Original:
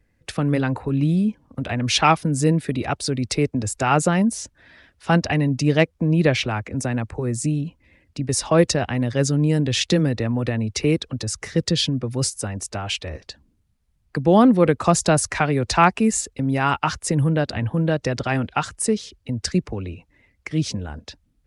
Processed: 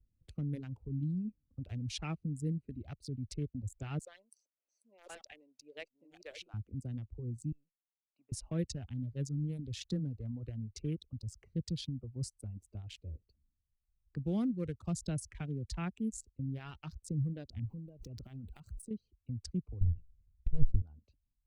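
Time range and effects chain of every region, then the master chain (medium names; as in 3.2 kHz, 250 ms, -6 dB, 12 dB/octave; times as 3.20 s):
3.99–6.54 s: chunks repeated in reverse 582 ms, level -5 dB + high-pass 540 Hz 24 dB/octave
7.52–8.32 s: companding laws mixed up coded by A + high-pass 970 Hz + distance through air 250 m
17.65–18.91 s: jump at every zero crossing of -30.5 dBFS + treble shelf 10 kHz +11 dB + compression, threshold -24 dBFS
19.81–20.82 s: comb filter that takes the minimum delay 1.8 ms + RIAA curve playback
whole clip: local Wiener filter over 25 samples; reverb removal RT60 1.5 s; amplifier tone stack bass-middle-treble 10-0-1; trim +1 dB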